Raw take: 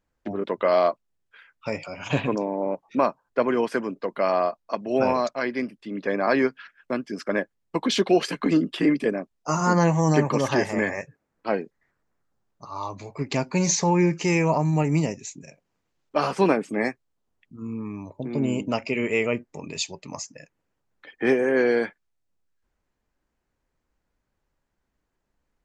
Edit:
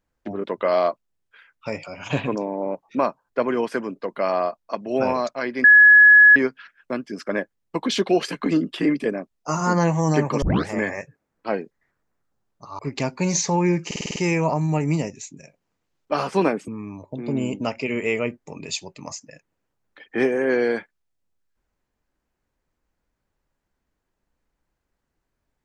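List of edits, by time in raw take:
5.64–6.36 bleep 1690 Hz -7 dBFS
10.42 tape start 0.26 s
12.79–13.13 cut
14.2 stutter 0.05 s, 7 plays
16.72–17.75 cut

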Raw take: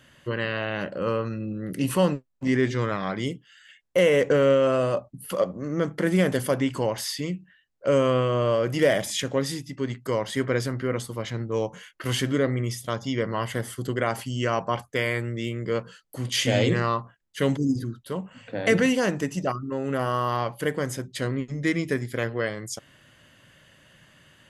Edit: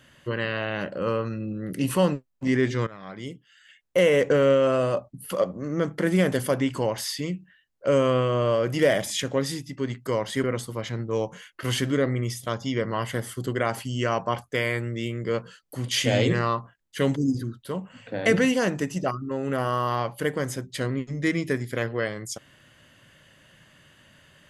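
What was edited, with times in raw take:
2.87–3.98 fade in, from -18 dB
10.44–10.85 cut

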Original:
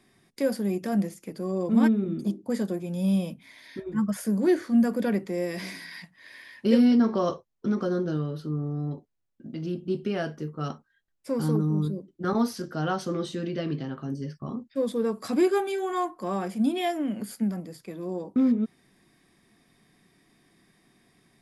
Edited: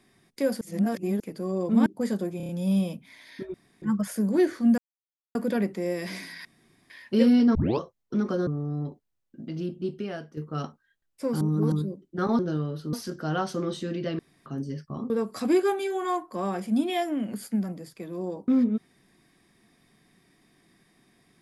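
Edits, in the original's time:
0.61–1.2 reverse
1.86–2.35 cut
2.86 stutter 0.03 s, 5 plays
3.91 insert room tone 0.28 s
4.87 insert silence 0.57 s
5.97–6.42 room tone
7.07 tape start 0.25 s
7.99–8.53 move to 12.45
9.65–10.43 fade out, to -10.5 dB
11.47–11.78 reverse
13.71–13.98 room tone
14.62–14.98 cut

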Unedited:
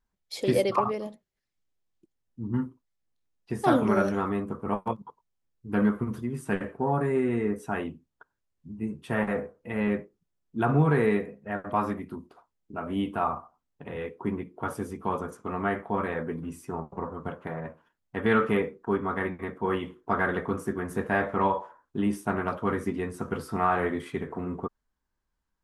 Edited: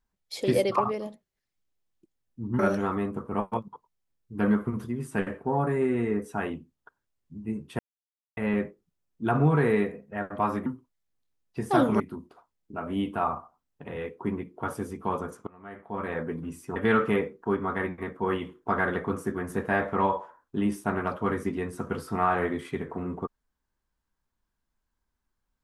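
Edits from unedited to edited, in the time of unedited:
2.59–3.93 move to 12
9.13–9.71 mute
15.47–16.16 fade in quadratic, from -22.5 dB
16.76–18.17 cut

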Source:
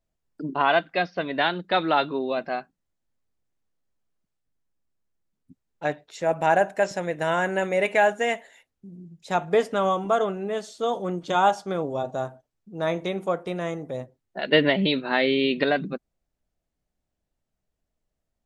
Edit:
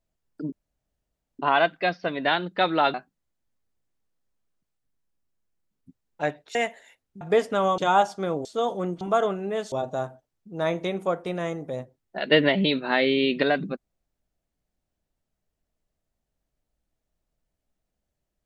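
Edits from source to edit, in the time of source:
0.52 insert room tone 0.87 s
2.07–2.56 cut
6.17–8.23 cut
8.89–9.42 cut
9.99–10.7 swap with 11.26–11.93

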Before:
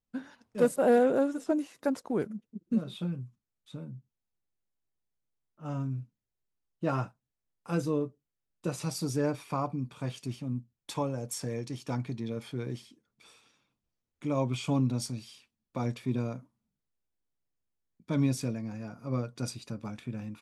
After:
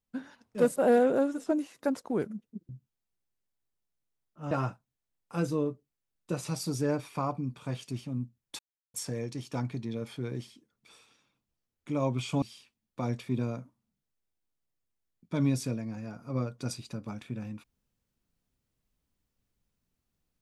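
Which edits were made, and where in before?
2.69–3.91 cut
5.73–6.86 cut
10.94–11.29 mute
14.77–15.19 cut

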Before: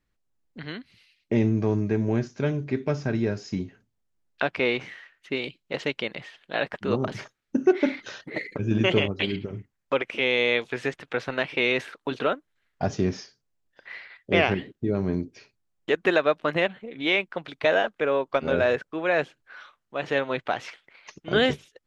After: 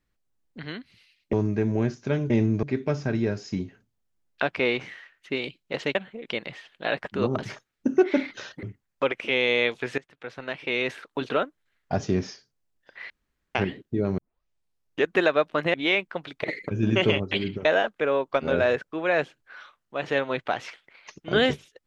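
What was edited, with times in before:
1.33–1.66 move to 2.63
8.32–9.53 move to 17.65
10.88–12.09 fade in, from -19.5 dB
14–14.45 room tone
15.08 tape start 0.87 s
16.64–16.95 move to 5.95

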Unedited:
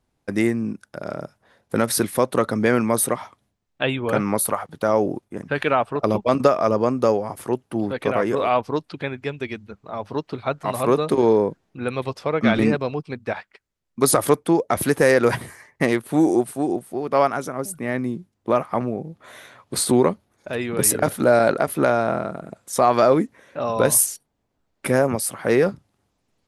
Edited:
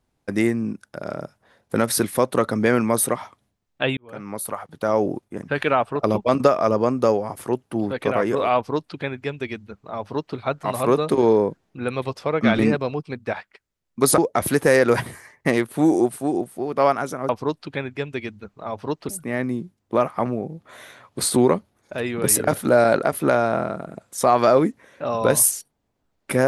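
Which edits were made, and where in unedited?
3.97–5.08 fade in
8.56–10.36 copy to 17.64
14.18–14.53 cut

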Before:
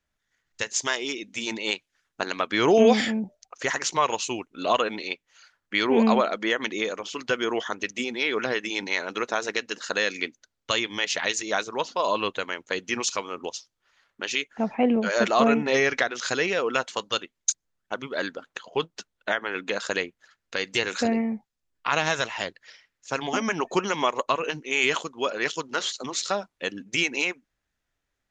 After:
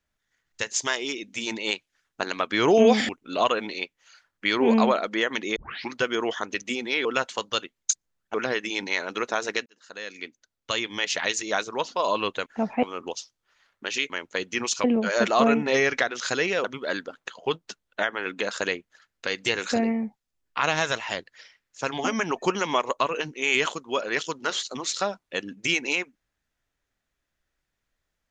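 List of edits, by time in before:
3.09–4.38 cut
6.85 tape start 0.37 s
9.66–11.09 fade in
12.46–13.2 swap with 14.47–14.84
16.64–17.93 move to 8.34

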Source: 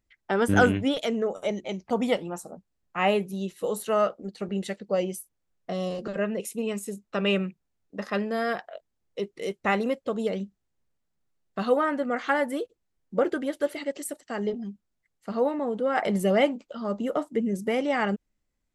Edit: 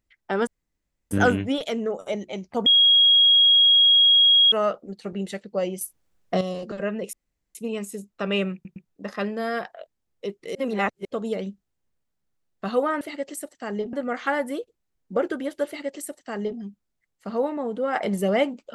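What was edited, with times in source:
0.47 insert room tone 0.64 s
2.02–3.88 bleep 3290 Hz -12.5 dBFS
5.17–5.77 gain +9 dB
6.49 insert room tone 0.42 s
7.48 stutter in place 0.11 s, 3 plays
9.49–9.99 reverse
13.69–14.61 copy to 11.95

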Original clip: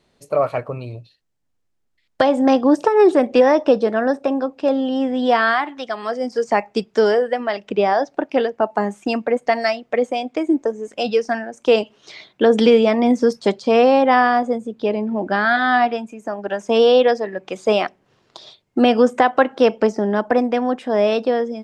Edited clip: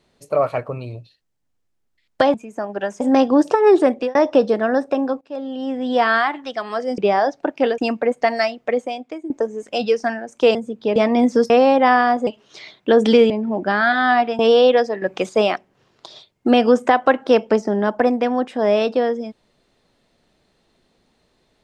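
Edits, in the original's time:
3.21–3.48 fade out
4.54–5.45 fade in, from -17 dB
6.31–7.72 cut
8.52–9.03 cut
9.86–10.55 fade out linear, to -16 dB
11.8–12.83 swap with 14.53–14.94
13.37–13.76 cut
16.03–16.7 move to 2.34
17.33–17.6 gain +6 dB

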